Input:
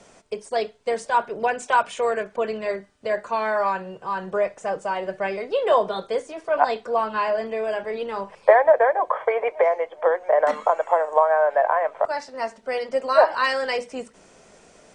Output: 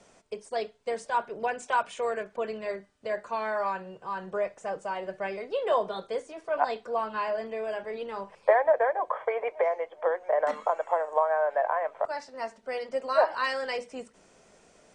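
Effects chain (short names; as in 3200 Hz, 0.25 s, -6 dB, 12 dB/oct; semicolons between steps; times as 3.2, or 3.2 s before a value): steep low-pass 11000 Hz; gain -7 dB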